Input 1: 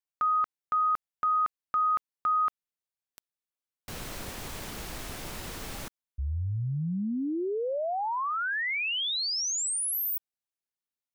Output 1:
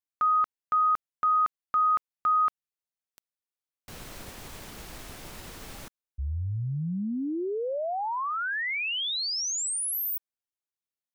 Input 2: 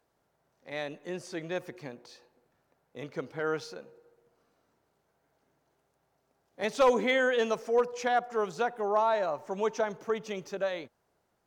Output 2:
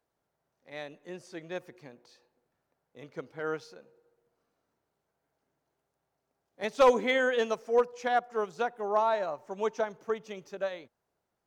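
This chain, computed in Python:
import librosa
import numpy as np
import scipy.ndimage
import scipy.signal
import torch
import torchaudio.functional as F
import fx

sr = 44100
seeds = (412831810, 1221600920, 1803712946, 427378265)

y = fx.upward_expand(x, sr, threshold_db=-39.0, expansion=1.5)
y = y * librosa.db_to_amplitude(2.5)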